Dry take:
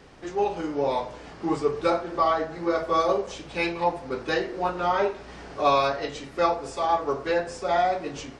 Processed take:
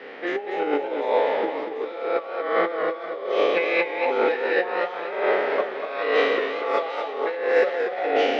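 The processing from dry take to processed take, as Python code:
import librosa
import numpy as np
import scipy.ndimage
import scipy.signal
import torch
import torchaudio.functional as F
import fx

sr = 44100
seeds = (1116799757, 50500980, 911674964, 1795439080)

p1 = fx.spec_trails(x, sr, decay_s=1.53)
p2 = fx.over_compress(p1, sr, threshold_db=-28.0, ratio=-0.5)
p3 = fx.cabinet(p2, sr, low_hz=280.0, low_slope=24, high_hz=3400.0, hz=(340.0, 480.0, 1000.0, 2000.0), db=(-5, 7, -5, 8))
p4 = p3 + fx.echo_wet_highpass(p3, sr, ms=744, feedback_pct=53, hz=2600.0, wet_db=-9.5, dry=0)
p5 = fx.echo_warbled(p4, sr, ms=239, feedback_pct=36, rate_hz=2.8, cents=101, wet_db=-7.0)
y = F.gain(torch.from_numpy(p5), 2.5).numpy()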